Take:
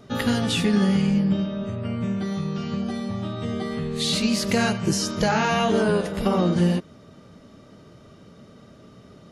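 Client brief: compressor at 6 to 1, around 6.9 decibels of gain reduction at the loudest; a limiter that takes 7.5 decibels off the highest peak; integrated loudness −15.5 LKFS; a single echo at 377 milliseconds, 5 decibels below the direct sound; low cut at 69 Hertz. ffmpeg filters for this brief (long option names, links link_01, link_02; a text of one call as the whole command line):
ffmpeg -i in.wav -af "highpass=69,acompressor=threshold=-24dB:ratio=6,alimiter=limit=-21dB:level=0:latency=1,aecho=1:1:377:0.562,volume=13dB" out.wav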